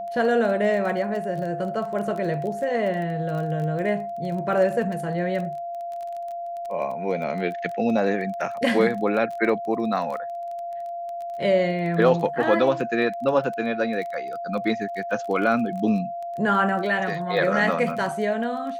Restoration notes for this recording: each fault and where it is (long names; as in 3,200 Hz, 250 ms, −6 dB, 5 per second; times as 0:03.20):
surface crackle 18 per second −31 dBFS
whistle 690 Hz −29 dBFS